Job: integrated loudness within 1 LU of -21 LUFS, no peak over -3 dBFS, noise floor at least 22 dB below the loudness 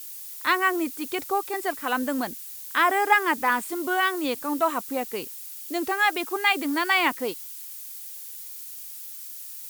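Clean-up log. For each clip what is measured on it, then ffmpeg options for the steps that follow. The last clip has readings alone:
noise floor -40 dBFS; noise floor target -47 dBFS; loudness -25.0 LUFS; peak -5.5 dBFS; loudness target -21.0 LUFS
-> -af "afftdn=nr=7:nf=-40"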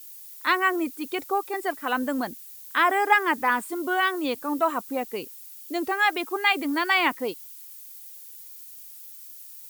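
noise floor -44 dBFS; noise floor target -47 dBFS
-> -af "afftdn=nr=6:nf=-44"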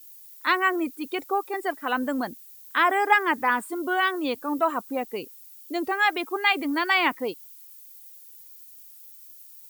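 noise floor -48 dBFS; loudness -25.0 LUFS; peak -6.0 dBFS; loudness target -21.0 LUFS
-> -af "volume=4dB,alimiter=limit=-3dB:level=0:latency=1"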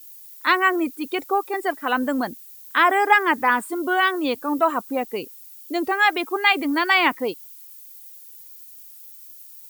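loudness -21.0 LUFS; peak -3.0 dBFS; noise floor -44 dBFS

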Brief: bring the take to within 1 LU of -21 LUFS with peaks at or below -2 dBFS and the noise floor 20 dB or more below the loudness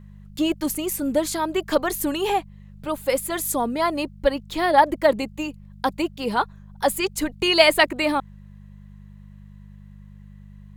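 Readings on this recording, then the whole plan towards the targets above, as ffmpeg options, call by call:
hum 50 Hz; harmonics up to 200 Hz; hum level -41 dBFS; loudness -22.5 LUFS; peak -1.5 dBFS; loudness target -21.0 LUFS
-> -af "bandreject=f=50:t=h:w=4,bandreject=f=100:t=h:w=4,bandreject=f=150:t=h:w=4,bandreject=f=200:t=h:w=4"
-af "volume=1.5dB,alimiter=limit=-2dB:level=0:latency=1"

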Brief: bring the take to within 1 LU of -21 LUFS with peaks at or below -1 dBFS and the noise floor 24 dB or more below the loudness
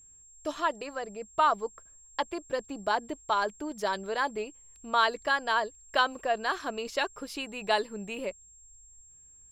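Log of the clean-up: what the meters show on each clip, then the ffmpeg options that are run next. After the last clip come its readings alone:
steady tone 7500 Hz; tone level -53 dBFS; loudness -30.5 LUFS; peak -11.5 dBFS; loudness target -21.0 LUFS
-> -af "bandreject=f=7.5k:w=30"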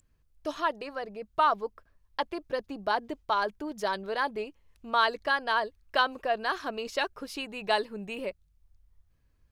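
steady tone none; loudness -31.0 LUFS; peak -11.5 dBFS; loudness target -21.0 LUFS
-> -af "volume=10dB"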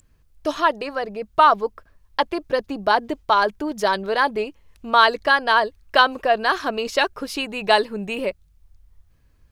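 loudness -21.0 LUFS; peak -1.5 dBFS; noise floor -59 dBFS

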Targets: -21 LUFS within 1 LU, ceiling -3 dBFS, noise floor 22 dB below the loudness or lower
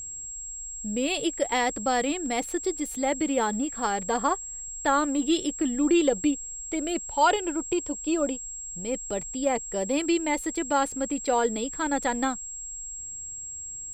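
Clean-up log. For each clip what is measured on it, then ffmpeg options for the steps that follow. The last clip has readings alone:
steady tone 7600 Hz; tone level -35 dBFS; loudness -27.5 LUFS; peak -10.5 dBFS; loudness target -21.0 LUFS
-> -af "bandreject=f=7.6k:w=30"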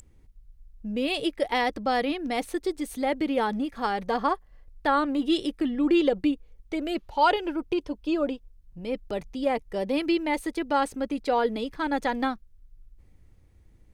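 steady tone none; loudness -27.5 LUFS; peak -11.0 dBFS; loudness target -21.0 LUFS
-> -af "volume=6.5dB"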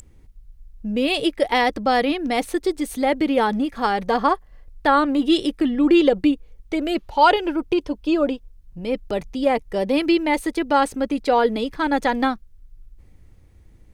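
loudness -21.0 LUFS; peak -4.5 dBFS; noise floor -50 dBFS

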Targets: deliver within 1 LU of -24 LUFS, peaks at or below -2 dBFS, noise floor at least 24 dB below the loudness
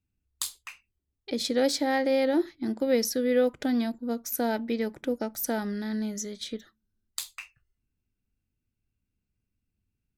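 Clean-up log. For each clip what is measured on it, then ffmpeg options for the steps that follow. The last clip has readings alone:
loudness -28.5 LUFS; peak -12.5 dBFS; loudness target -24.0 LUFS
-> -af "volume=4.5dB"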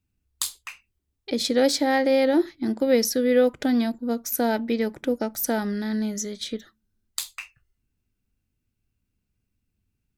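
loudness -24.0 LUFS; peak -8.0 dBFS; noise floor -79 dBFS

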